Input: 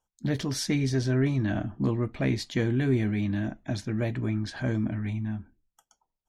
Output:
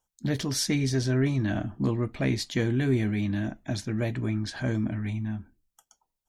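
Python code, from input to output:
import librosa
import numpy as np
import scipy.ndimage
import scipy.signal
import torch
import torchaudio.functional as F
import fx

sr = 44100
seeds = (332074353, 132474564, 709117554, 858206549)

y = fx.high_shelf(x, sr, hz=4700.0, db=6.5)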